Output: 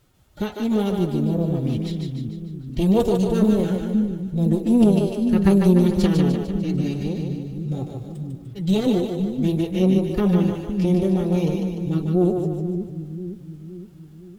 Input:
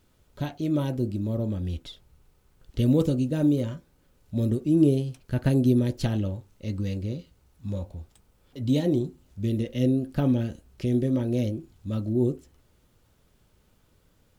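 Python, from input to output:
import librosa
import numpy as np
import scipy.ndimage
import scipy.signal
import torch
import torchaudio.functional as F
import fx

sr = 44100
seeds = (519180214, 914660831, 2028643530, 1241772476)

y = fx.pitch_keep_formants(x, sr, semitones=6.5)
y = fx.tube_stage(y, sr, drive_db=15.0, bias=0.75)
y = fx.echo_split(y, sr, split_hz=320.0, low_ms=514, high_ms=149, feedback_pct=52, wet_db=-4)
y = F.gain(torch.from_numpy(y), 8.5).numpy()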